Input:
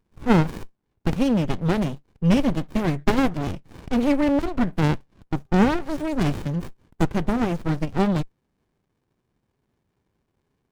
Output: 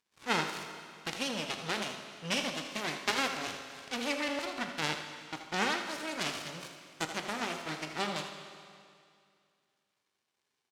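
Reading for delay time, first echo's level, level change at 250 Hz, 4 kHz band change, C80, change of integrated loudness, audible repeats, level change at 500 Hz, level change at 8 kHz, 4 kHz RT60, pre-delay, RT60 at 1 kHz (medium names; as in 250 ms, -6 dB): 80 ms, -10.0 dB, -19.5 dB, +3.0 dB, 6.0 dB, -11.5 dB, 1, -12.5 dB, +3.5 dB, 2.2 s, 19 ms, 2.3 s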